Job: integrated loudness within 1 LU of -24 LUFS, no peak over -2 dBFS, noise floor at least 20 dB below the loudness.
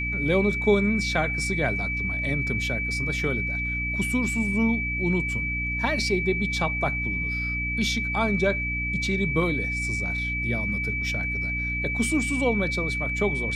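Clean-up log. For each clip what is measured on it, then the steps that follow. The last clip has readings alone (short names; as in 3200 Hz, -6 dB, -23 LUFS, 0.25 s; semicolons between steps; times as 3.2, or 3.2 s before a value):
hum 60 Hz; harmonics up to 300 Hz; hum level -29 dBFS; steady tone 2300 Hz; tone level -27 dBFS; loudness -24.5 LUFS; peak -8.0 dBFS; loudness target -24.0 LUFS
-> notches 60/120/180/240/300 Hz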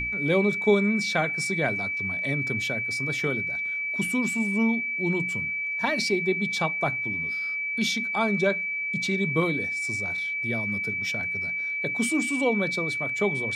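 hum none; steady tone 2300 Hz; tone level -27 dBFS
-> notch 2300 Hz, Q 30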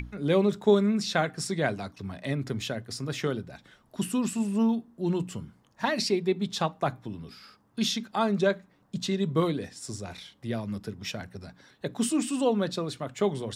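steady tone none; loudness -29.0 LUFS; peak -9.5 dBFS; loudness target -24.0 LUFS
-> gain +5 dB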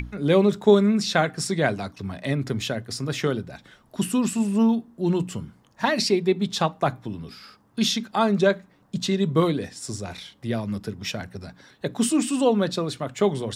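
loudness -24.0 LUFS; peak -4.5 dBFS; noise floor -59 dBFS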